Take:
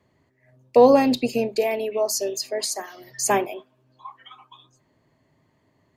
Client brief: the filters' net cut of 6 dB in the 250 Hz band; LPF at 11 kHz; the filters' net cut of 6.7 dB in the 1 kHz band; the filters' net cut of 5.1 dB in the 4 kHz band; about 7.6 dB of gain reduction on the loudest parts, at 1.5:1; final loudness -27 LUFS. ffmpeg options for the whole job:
-af "lowpass=11000,equalizer=f=250:t=o:g=-6,equalizer=f=1000:t=o:g=-9,equalizer=f=4000:t=o:g=-6,acompressor=threshold=0.02:ratio=1.5,volume=1.58"

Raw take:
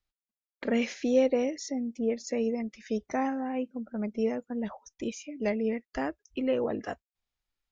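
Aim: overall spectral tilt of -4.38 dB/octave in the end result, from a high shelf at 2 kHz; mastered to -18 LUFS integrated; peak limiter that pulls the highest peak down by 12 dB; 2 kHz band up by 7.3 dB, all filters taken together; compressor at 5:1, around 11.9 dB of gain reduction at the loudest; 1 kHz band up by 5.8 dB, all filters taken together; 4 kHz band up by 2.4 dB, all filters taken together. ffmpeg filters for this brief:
-af "equalizer=f=1000:t=o:g=7.5,highshelf=f=2000:g=-5,equalizer=f=2000:t=o:g=8.5,equalizer=f=4000:t=o:g=4.5,acompressor=threshold=0.0282:ratio=5,volume=10,alimiter=limit=0.398:level=0:latency=1"

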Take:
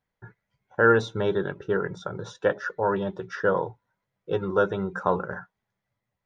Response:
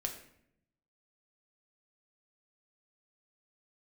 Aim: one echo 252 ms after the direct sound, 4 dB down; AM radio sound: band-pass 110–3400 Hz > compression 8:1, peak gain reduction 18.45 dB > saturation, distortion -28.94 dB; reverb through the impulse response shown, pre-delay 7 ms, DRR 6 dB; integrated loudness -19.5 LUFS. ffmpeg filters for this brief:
-filter_complex "[0:a]aecho=1:1:252:0.631,asplit=2[s0][s1];[1:a]atrim=start_sample=2205,adelay=7[s2];[s1][s2]afir=irnorm=-1:irlink=0,volume=0.473[s3];[s0][s3]amix=inputs=2:normalize=0,highpass=110,lowpass=3400,acompressor=threshold=0.0251:ratio=8,asoftclip=threshold=0.119,volume=7.5"

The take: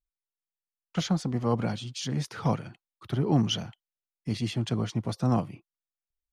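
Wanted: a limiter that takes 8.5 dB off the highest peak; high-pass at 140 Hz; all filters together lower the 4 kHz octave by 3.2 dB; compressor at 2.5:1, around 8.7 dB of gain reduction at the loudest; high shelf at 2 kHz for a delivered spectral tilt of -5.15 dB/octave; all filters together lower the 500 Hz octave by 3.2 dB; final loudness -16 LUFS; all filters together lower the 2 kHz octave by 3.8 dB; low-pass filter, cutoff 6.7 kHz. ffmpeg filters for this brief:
-af "highpass=140,lowpass=6700,equalizer=f=500:t=o:g=-4,highshelf=f=2000:g=3.5,equalizer=f=2000:t=o:g=-6,equalizer=f=4000:t=o:g=-5,acompressor=threshold=0.02:ratio=2.5,volume=16.8,alimiter=limit=0.531:level=0:latency=1"

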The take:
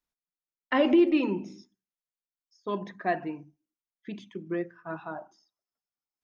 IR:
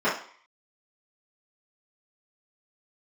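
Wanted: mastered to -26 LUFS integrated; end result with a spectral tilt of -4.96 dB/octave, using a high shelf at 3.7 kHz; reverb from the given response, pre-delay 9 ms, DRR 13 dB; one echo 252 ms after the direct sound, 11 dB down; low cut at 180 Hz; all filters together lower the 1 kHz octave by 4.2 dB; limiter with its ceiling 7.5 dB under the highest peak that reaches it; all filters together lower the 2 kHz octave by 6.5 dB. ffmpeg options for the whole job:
-filter_complex "[0:a]highpass=180,equalizer=f=1000:t=o:g=-5,equalizer=f=2000:t=o:g=-7.5,highshelf=f=3700:g=3,alimiter=limit=0.0891:level=0:latency=1,aecho=1:1:252:0.282,asplit=2[s0][s1];[1:a]atrim=start_sample=2205,adelay=9[s2];[s1][s2]afir=irnorm=-1:irlink=0,volume=0.0355[s3];[s0][s3]amix=inputs=2:normalize=0,volume=2.51"

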